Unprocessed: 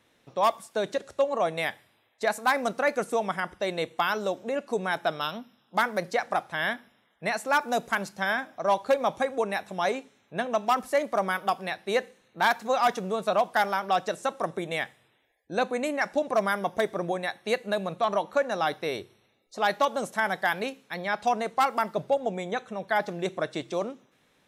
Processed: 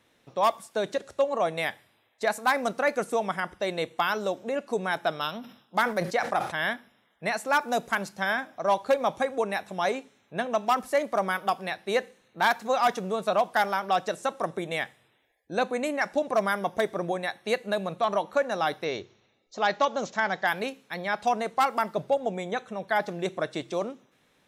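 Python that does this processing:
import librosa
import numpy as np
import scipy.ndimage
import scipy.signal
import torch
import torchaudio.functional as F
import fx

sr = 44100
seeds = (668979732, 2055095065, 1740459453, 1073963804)

y = fx.sustainer(x, sr, db_per_s=110.0, at=(5.35, 6.67))
y = fx.resample_bad(y, sr, factor=3, down='none', up='filtered', at=(18.84, 20.47))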